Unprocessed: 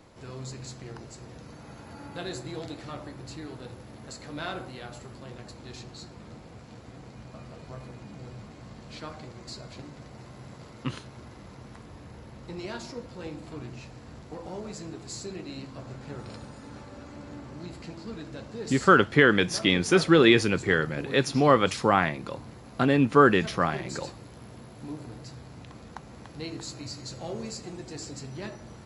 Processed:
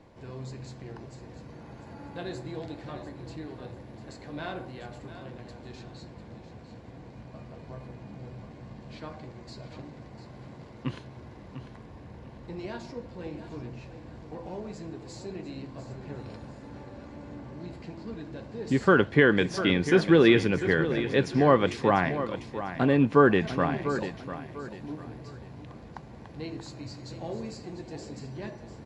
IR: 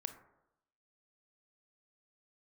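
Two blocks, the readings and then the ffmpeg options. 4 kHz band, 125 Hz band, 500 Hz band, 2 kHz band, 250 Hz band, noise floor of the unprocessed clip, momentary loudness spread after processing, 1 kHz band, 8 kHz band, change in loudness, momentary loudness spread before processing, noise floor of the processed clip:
-5.5 dB, +0.5 dB, 0.0 dB, -2.5 dB, 0.0 dB, -48 dBFS, 24 LU, -3.0 dB, -10.0 dB, -1.5 dB, 24 LU, -48 dBFS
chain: -af "aemphasis=mode=reproduction:type=75kf,bandreject=f=1300:w=6.6,aecho=1:1:697|1394|2091:0.266|0.0825|0.0256"

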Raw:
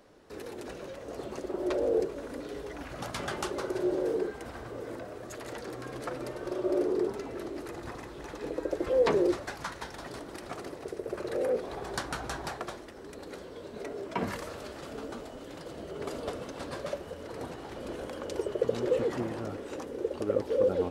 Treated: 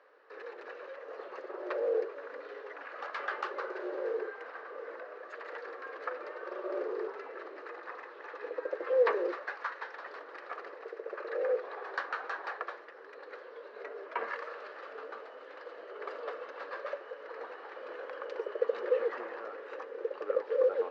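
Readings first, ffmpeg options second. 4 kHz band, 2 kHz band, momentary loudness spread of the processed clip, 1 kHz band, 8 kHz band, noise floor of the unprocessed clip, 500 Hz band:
-9.5 dB, +2.5 dB, 14 LU, -0.5 dB, under -20 dB, -45 dBFS, -3.0 dB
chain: -af "acrusher=bits=7:mode=log:mix=0:aa=0.000001,highpass=f=470:w=0.5412,highpass=f=470:w=1.3066,equalizer=f=480:t=q:w=4:g=6,equalizer=f=680:t=q:w=4:g=-4,equalizer=f=1200:t=q:w=4:g=7,equalizer=f=1700:t=q:w=4:g=8,equalizer=f=3400:t=q:w=4:g=-7,lowpass=f=3800:w=0.5412,lowpass=f=3800:w=1.3066,volume=0.668"

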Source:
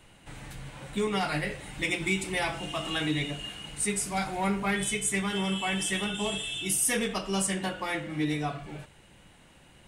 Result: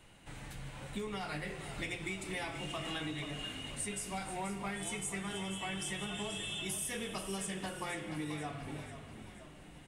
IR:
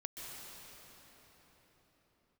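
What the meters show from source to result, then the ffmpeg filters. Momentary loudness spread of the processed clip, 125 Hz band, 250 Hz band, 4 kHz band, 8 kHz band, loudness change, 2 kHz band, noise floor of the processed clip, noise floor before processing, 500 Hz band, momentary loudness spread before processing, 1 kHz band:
10 LU, -8.0 dB, -10.0 dB, -8.5 dB, -10.5 dB, -10.0 dB, -9.5 dB, -54 dBFS, -56 dBFS, -9.5 dB, 12 LU, -9.0 dB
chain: -filter_complex "[0:a]acompressor=threshold=0.0224:ratio=6,asplit=7[s0][s1][s2][s3][s4][s5][s6];[s1]adelay=483,afreqshift=-45,volume=0.316[s7];[s2]adelay=966,afreqshift=-90,volume=0.168[s8];[s3]adelay=1449,afreqshift=-135,volume=0.0891[s9];[s4]adelay=1932,afreqshift=-180,volume=0.0473[s10];[s5]adelay=2415,afreqshift=-225,volume=0.0248[s11];[s6]adelay=2898,afreqshift=-270,volume=0.0132[s12];[s0][s7][s8][s9][s10][s11][s12]amix=inputs=7:normalize=0,asplit=2[s13][s14];[1:a]atrim=start_sample=2205[s15];[s14][s15]afir=irnorm=-1:irlink=0,volume=0.376[s16];[s13][s16]amix=inputs=2:normalize=0,volume=0.531"

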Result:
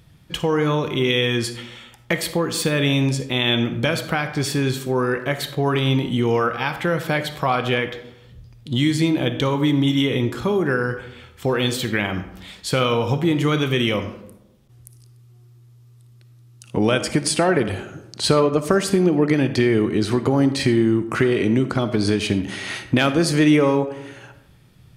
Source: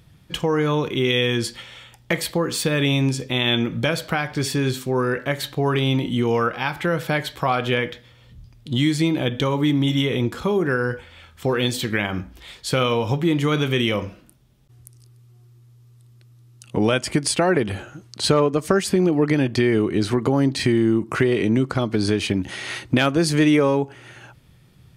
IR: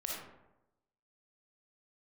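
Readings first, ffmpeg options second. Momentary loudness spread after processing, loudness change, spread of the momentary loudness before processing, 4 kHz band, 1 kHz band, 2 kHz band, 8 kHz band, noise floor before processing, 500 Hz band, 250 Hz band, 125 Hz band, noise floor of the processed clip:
9 LU, +1.0 dB, 9 LU, +1.0 dB, +1.0 dB, +1.0 dB, +0.5 dB, -51 dBFS, +1.0 dB, +1.0 dB, +0.5 dB, -49 dBFS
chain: -filter_complex "[0:a]asplit=2[s0][s1];[1:a]atrim=start_sample=2205[s2];[s1][s2]afir=irnorm=-1:irlink=0,volume=0.376[s3];[s0][s3]amix=inputs=2:normalize=0,volume=0.841"

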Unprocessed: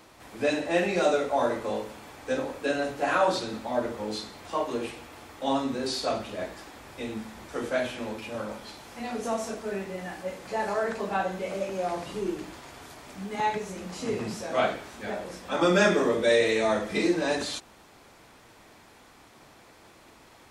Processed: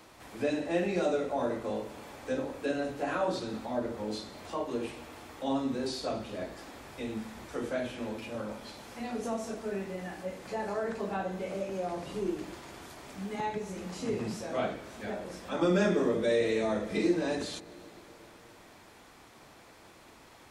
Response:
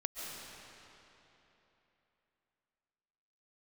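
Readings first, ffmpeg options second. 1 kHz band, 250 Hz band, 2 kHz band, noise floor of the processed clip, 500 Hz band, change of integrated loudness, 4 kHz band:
-7.5 dB, -2.0 dB, -8.5 dB, -55 dBFS, -4.5 dB, -5.0 dB, -7.5 dB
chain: -filter_complex "[0:a]acrossover=split=470[s0][s1];[s1]acompressor=threshold=0.00501:ratio=1.5[s2];[s0][s2]amix=inputs=2:normalize=0,asplit=2[s3][s4];[1:a]atrim=start_sample=2205,asetrate=34839,aresample=44100[s5];[s4][s5]afir=irnorm=-1:irlink=0,volume=0.106[s6];[s3][s6]amix=inputs=2:normalize=0,volume=0.794"

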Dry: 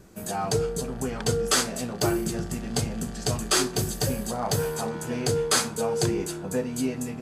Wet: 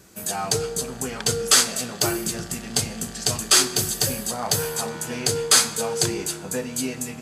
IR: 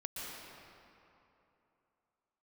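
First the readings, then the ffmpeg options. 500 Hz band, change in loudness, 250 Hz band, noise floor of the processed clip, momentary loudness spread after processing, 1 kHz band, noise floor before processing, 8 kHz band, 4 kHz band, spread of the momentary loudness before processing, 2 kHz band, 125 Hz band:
-1.0 dB, +5.0 dB, -2.0 dB, -38 dBFS, 12 LU, +1.5 dB, -37 dBFS, +8.5 dB, +7.5 dB, 8 LU, +4.5 dB, -2.5 dB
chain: -filter_complex "[0:a]highpass=55,tiltshelf=f=1400:g=-5.5,asplit=2[s0][s1];[1:a]atrim=start_sample=2205,asetrate=66150,aresample=44100[s2];[s1][s2]afir=irnorm=-1:irlink=0,volume=0.237[s3];[s0][s3]amix=inputs=2:normalize=0,volume=1.33"

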